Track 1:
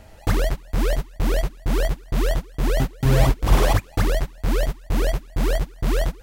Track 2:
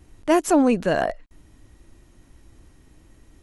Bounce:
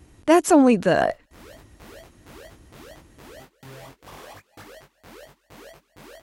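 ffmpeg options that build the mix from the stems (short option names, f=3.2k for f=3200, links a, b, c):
-filter_complex "[0:a]highpass=f=500:p=1,acompressor=threshold=-31dB:ratio=2.5,flanger=delay=19.5:depth=2.6:speed=0.77,adelay=600,volume=-8.5dB[a];[1:a]volume=2.5dB,asplit=2[b][c];[c]apad=whole_len=301192[d];[a][d]sidechaincompress=threshold=-22dB:ratio=8:attack=8.1:release=645[e];[e][b]amix=inputs=2:normalize=0,highpass=55"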